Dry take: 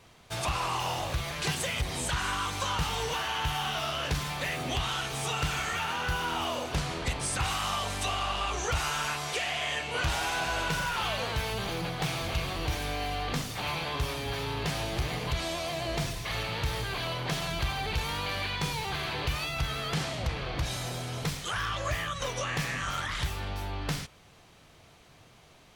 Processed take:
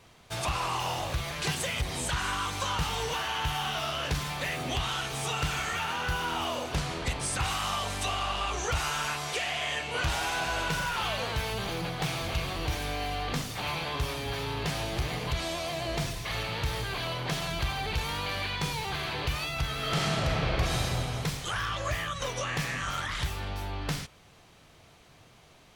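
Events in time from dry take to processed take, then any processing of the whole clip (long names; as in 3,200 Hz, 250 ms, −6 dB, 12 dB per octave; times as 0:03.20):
0:19.75–0:20.82: thrown reverb, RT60 2.5 s, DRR −3 dB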